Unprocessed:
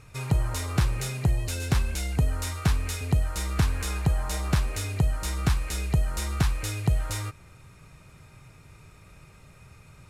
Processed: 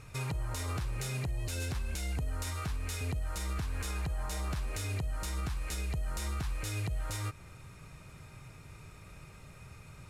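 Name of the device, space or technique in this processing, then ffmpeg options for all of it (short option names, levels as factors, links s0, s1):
stacked limiters: -af "alimiter=limit=0.15:level=0:latency=1:release=393,alimiter=limit=0.0668:level=0:latency=1:release=294,alimiter=level_in=1.5:limit=0.0631:level=0:latency=1:release=102,volume=0.668"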